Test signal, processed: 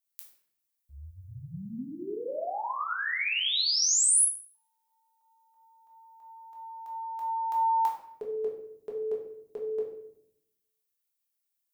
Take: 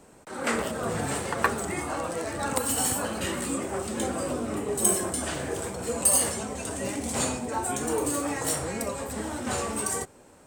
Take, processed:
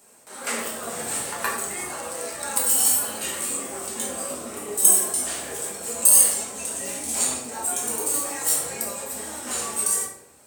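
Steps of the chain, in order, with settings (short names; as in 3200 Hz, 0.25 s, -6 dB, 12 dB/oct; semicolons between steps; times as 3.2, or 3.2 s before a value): RIAA curve recording; shoebox room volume 180 m³, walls mixed, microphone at 1.3 m; gain -7 dB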